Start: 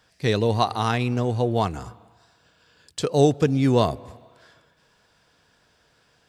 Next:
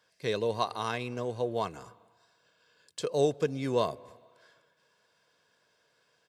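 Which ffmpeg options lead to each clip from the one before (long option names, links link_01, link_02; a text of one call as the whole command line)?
ffmpeg -i in.wav -af "highpass=190,aecho=1:1:1.9:0.39,volume=-8.5dB" out.wav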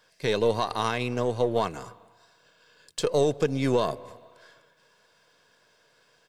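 ffmpeg -i in.wav -af "aeval=exprs='if(lt(val(0),0),0.708*val(0),val(0))':channel_layout=same,alimiter=limit=-21dB:level=0:latency=1:release=81,volume=8.5dB" out.wav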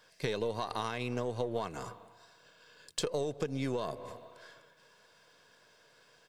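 ffmpeg -i in.wav -af "acompressor=threshold=-30dB:ratio=10" out.wav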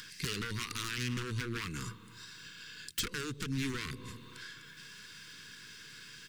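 ffmpeg -i in.wav -af "aeval=exprs='0.0237*(abs(mod(val(0)/0.0237+3,4)-2)-1)':channel_layout=same,asuperstop=centerf=670:order=4:qfactor=0.52,acompressor=mode=upward:threshold=-48dB:ratio=2.5,volume=7dB" out.wav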